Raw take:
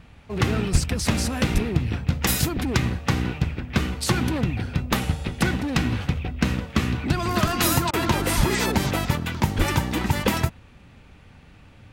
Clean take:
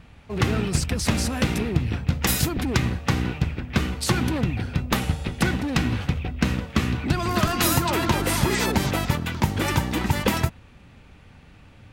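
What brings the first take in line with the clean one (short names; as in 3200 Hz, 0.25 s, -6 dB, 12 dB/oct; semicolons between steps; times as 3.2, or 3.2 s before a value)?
de-plosive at 0.72/1.53/8.36/9.57; interpolate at 7.91, 23 ms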